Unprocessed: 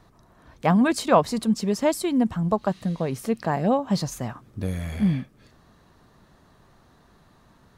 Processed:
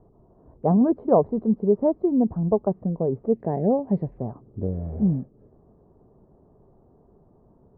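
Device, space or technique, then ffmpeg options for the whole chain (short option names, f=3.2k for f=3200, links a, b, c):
under water: -filter_complex "[0:a]lowpass=f=780:w=0.5412,lowpass=f=780:w=1.3066,equalizer=f=410:t=o:w=0.41:g=8,asettb=1/sr,asplit=3[a][b][c];[a]atrim=end=3.334[d];[b]atrim=start=3.33:end=4.18,asetpts=PTS-STARTPTS,afade=t=in:d=0.004:c=qsin,afade=t=out:st=0.846:d=0.004:c=qsin,highshelf=f=1.6k:t=q:w=3:g=8[e];[c]atrim=start=4.176[f];[d][e]acrossfade=d=0.004:c1=hsin:c2=qsin[g];[g][f]acrossfade=d=0.004:c1=qsin:c2=hsin"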